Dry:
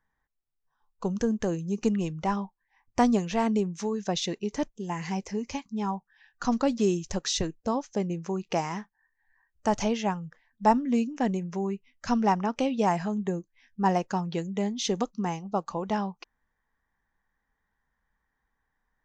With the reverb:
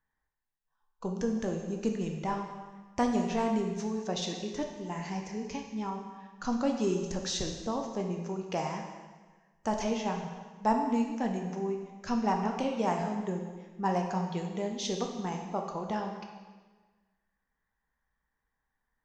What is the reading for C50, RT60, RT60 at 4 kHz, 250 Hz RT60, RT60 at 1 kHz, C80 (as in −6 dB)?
5.0 dB, 1.4 s, 1.3 s, 1.4 s, 1.4 s, 6.5 dB